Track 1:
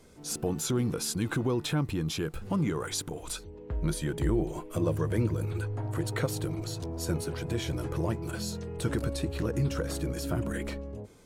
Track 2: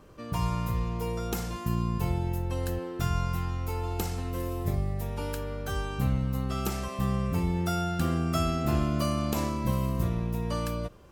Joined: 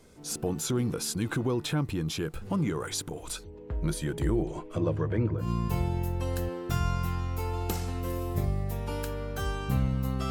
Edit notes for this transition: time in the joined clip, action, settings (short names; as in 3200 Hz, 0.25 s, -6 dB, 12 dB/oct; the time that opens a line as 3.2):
track 1
4.42–5.5 LPF 8100 Hz -> 1600 Hz
5.44 switch to track 2 from 1.74 s, crossfade 0.12 s